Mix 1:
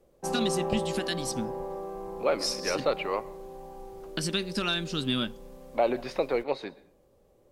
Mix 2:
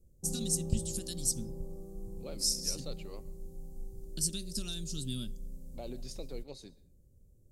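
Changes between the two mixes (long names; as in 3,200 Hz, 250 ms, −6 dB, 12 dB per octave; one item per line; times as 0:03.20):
background: add tilt shelving filter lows +8.5 dB, about 660 Hz
master: add drawn EQ curve 100 Hz 0 dB, 1,000 Hz −27 dB, 2,100 Hz −25 dB, 7,200 Hz +7 dB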